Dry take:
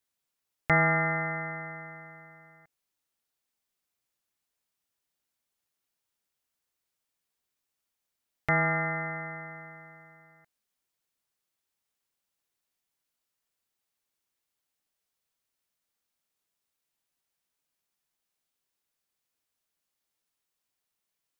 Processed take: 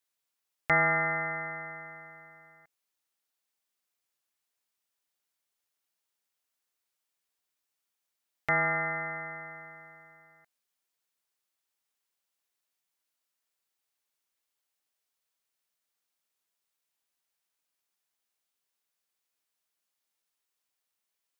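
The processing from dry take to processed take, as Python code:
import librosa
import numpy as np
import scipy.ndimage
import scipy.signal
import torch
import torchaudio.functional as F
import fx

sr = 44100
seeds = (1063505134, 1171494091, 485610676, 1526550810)

y = fx.low_shelf(x, sr, hz=290.0, db=-10.0)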